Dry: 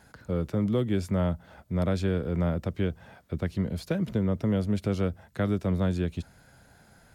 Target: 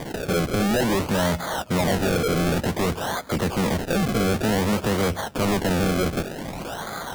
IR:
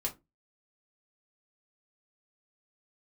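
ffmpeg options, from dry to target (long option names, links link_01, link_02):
-filter_complex "[0:a]asplit=2[link_01][link_02];[link_02]highpass=frequency=720:poles=1,volume=38dB,asoftclip=type=tanh:threshold=-15dB[link_03];[link_01][link_03]amix=inputs=2:normalize=0,lowpass=frequency=2300:poles=1,volume=-6dB,acrusher=samples=32:mix=1:aa=0.000001:lfo=1:lforange=32:lforate=0.54"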